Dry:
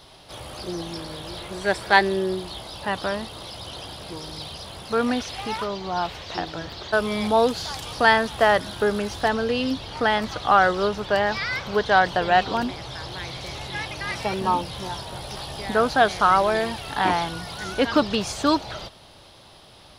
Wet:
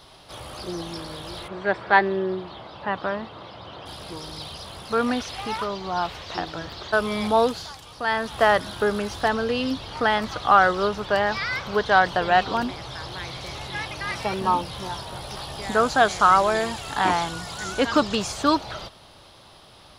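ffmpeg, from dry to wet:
-filter_complex "[0:a]asplit=3[a][b][c];[a]afade=t=out:st=1.47:d=0.02[d];[b]highpass=100,lowpass=2.4k,afade=t=in:st=1.47:d=0.02,afade=t=out:st=3.85:d=0.02[e];[c]afade=t=in:st=3.85:d=0.02[f];[d][e][f]amix=inputs=3:normalize=0,asettb=1/sr,asplit=3[g][h][i];[g]atrim=end=15.624[j];[h]atrim=start=15.62:end=18.27,asetpts=PTS-STARTPTS,afade=t=in:d=0.004:c=qsin,afade=t=out:st=2.646:d=0.004:c=qsin,equalizer=f=7.2k:t=o:w=0.39:g=12[k];[i]atrim=start=18.266[l];[j][k]acrossfade=d=0.004:c1=hsin:c2=qsin[m];[m][l]acrossfade=d=0.004:c1=qsin:c2=hsin,asplit=3[n][o][p];[n]atrim=end=7.77,asetpts=PTS-STARTPTS,afade=t=out:st=7.42:d=0.35:silence=0.334965[q];[o]atrim=start=7.77:end=8.05,asetpts=PTS-STARTPTS,volume=-9.5dB[r];[p]atrim=start=8.05,asetpts=PTS-STARTPTS,afade=t=in:d=0.35:silence=0.334965[s];[q][r][s]concat=n=3:v=0:a=1,equalizer=f=1.2k:t=o:w=0.65:g=3.5,volume=-1dB"

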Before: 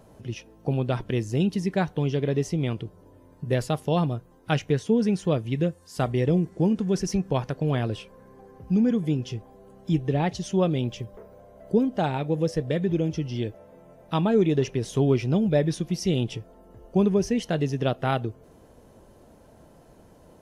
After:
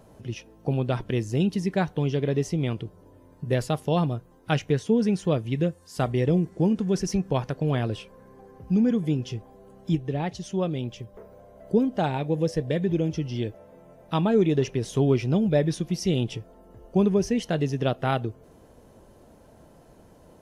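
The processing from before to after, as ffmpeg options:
-filter_complex "[0:a]asettb=1/sr,asplit=3[a][b][c];[a]atrim=end=12.084[d];[b]atrim=start=12.08:end=12.99,asetpts=PTS-STARTPTS,afade=t=in:d=0.004:c=qsin,afade=t=out:st=0.906:d=0.004:c=qsin,bandreject=f=1.3k:w=8.8[e];[c]atrim=start=12.986[f];[d][e]acrossfade=d=0.004:c1=hsin:c2=qsin[g];[g][f]acrossfade=d=0.004:c1=qsin:c2=hsin,asplit=3[h][i][j];[h]atrim=end=9.952[k];[i]atrim=start=9.948:end=11.162,asetpts=PTS-STARTPTS,volume=-4dB[l];[j]atrim=start=11.158[m];[k][l]acrossfade=d=0.004:c1=hsin:c2=hsin[n];[n][m]acrossfade=d=0.004:c1=hsin:c2=hsin"

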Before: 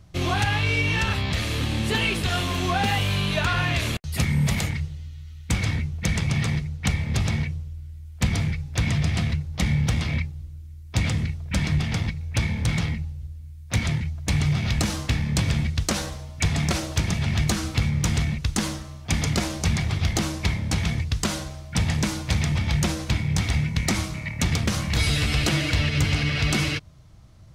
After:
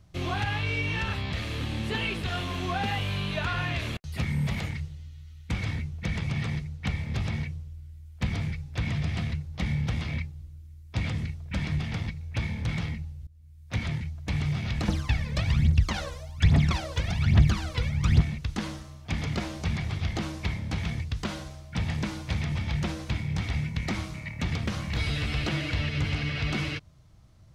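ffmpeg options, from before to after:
-filter_complex "[0:a]asettb=1/sr,asplit=3[a][b][c];[a]atrim=end=14.884[d];[b]atrim=start=14.88:end=18.21,asetpts=PTS-STARTPTS,afade=t=in:d=0.004:c=qsin,afade=t=out:st=3.326:d=0.004:c=qsin,aphaser=in_gain=1:out_gain=1:delay=2.1:decay=0.74:speed=1.2:type=triangular[e];[c]atrim=start=18.206[f];[d][e]acrossfade=d=0.004:c1=hsin:c2=qsin[g];[g][f]acrossfade=d=0.004:c1=qsin:c2=hsin,asplit=2[h][i];[h]atrim=end=13.27,asetpts=PTS-STARTPTS,afade=t=out:st=13.266:d=0.004:c=hsin:silence=0.158489[j];[i]atrim=start=13.27,asetpts=PTS-STARTPTS,afade=t=in:d=0.46:silence=0.158489[k];[j][k]concat=n=2:v=0:a=1,acrossover=split=4400[l][m];[m]acompressor=threshold=-45dB:ratio=4:attack=1:release=60[n];[l][n]amix=inputs=2:normalize=0,volume=-6dB"

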